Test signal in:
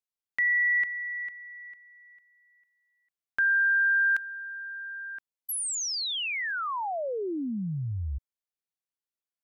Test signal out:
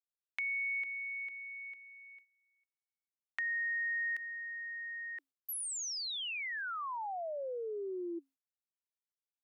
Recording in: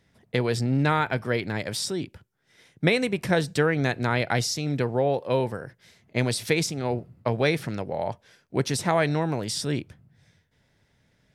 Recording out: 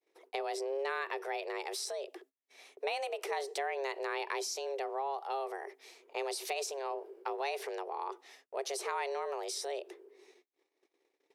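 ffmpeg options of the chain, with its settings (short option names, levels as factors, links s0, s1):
-af "afreqshift=270,agate=range=0.0224:threshold=0.00112:ratio=3:release=97:detection=rms,acompressor=threshold=0.00562:ratio=2:attack=7.4:release=71:detection=peak"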